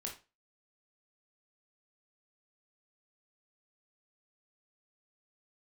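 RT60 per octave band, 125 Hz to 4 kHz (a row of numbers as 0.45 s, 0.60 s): 0.30 s, 0.30 s, 0.30 s, 0.30 s, 0.25 s, 0.25 s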